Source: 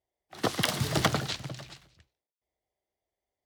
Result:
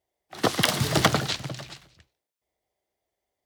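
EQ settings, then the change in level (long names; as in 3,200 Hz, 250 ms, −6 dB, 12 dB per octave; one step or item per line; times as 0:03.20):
low-shelf EQ 88 Hz −5 dB
+5.5 dB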